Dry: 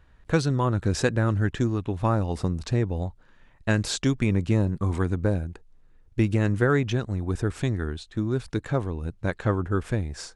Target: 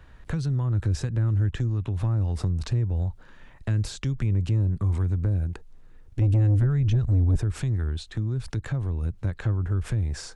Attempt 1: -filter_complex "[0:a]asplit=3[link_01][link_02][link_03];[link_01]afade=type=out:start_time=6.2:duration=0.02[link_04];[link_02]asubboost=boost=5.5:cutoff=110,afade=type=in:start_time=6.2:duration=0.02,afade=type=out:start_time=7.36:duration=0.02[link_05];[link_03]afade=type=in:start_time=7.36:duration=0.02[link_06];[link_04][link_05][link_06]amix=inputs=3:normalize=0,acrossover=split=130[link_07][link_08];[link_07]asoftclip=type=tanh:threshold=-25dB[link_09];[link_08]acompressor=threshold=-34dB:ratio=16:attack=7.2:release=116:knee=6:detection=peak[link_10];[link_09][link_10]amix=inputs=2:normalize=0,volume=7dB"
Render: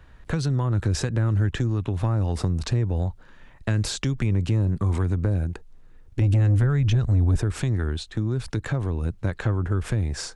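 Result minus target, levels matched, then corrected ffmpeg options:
downward compressor: peak gain reduction −8.5 dB
-filter_complex "[0:a]asplit=3[link_01][link_02][link_03];[link_01]afade=type=out:start_time=6.2:duration=0.02[link_04];[link_02]asubboost=boost=5.5:cutoff=110,afade=type=in:start_time=6.2:duration=0.02,afade=type=out:start_time=7.36:duration=0.02[link_05];[link_03]afade=type=in:start_time=7.36:duration=0.02[link_06];[link_04][link_05][link_06]amix=inputs=3:normalize=0,acrossover=split=130[link_07][link_08];[link_07]asoftclip=type=tanh:threshold=-25dB[link_09];[link_08]acompressor=threshold=-43dB:ratio=16:attack=7.2:release=116:knee=6:detection=peak[link_10];[link_09][link_10]amix=inputs=2:normalize=0,volume=7dB"

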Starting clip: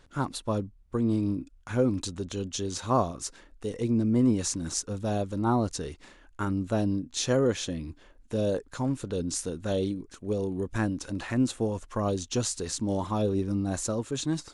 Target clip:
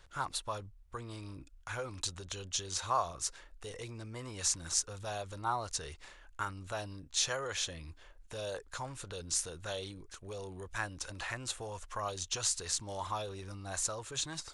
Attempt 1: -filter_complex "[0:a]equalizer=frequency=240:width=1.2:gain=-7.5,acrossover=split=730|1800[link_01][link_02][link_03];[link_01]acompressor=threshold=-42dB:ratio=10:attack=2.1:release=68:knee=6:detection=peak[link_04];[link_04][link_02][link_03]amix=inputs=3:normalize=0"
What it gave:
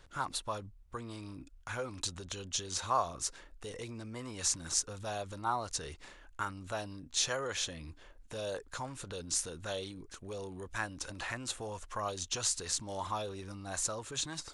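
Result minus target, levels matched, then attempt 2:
250 Hz band +3.0 dB
-filter_complex "[0:a]equalizer=frequency=240:width=1.2:gain=-18,acrossover=split=730|1800[link_01][link_02][link_03];[link_01]acompressor=threshold=-42dB:ratio=10:attack=2.1:release=68:knee=6:detection=peak[link_04];[link_04][link_02][link_03]amix=inputs=3:normalize=0"

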